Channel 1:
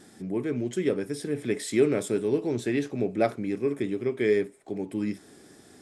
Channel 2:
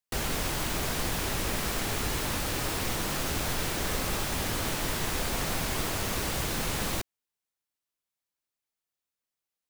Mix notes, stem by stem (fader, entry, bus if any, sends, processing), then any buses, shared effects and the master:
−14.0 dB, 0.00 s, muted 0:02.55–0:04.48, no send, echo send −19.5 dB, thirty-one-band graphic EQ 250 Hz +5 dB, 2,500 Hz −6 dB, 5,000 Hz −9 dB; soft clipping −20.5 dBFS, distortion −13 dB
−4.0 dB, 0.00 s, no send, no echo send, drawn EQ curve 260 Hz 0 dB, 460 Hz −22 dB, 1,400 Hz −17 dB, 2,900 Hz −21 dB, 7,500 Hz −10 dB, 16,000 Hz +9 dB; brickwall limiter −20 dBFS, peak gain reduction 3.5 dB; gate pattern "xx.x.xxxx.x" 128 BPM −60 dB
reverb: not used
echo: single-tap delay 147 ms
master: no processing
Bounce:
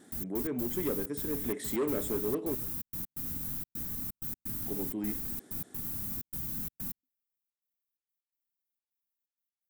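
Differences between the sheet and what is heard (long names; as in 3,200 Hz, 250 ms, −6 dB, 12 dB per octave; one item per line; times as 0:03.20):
stem 1 −14.0 dB → −4.5 dB
master: extra low-shelf EQ 100 Hz −10.5 dB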